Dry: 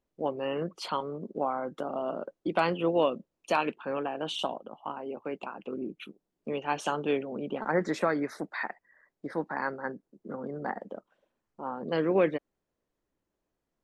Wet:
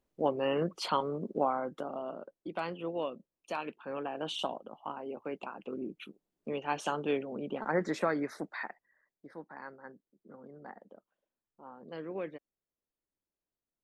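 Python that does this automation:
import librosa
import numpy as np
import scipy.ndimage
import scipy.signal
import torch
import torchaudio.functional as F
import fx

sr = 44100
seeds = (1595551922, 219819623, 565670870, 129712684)

y = fx.gain(x, sr, db=fx.line((1.38, 1.5), (2.33, -10.0), (3.61, -10.0), (4.19, -3.0), (8.44, -3.0), (9.27, -14.0)))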